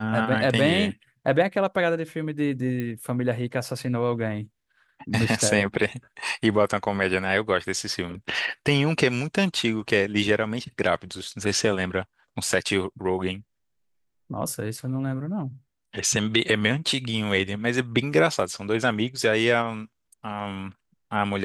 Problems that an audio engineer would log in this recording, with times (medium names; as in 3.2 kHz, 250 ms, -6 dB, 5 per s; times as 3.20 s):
2.80 s: pop -18 dBFS